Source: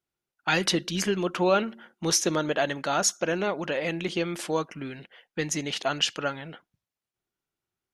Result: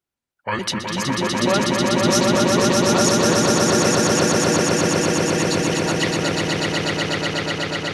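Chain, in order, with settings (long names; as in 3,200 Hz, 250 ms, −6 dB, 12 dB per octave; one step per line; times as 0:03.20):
pitch shifter gated in a rhythm −7 semitones, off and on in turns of 147 ms
echo that builds up and dies away 123 ms, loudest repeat 8, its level −3 dB
level +1 dB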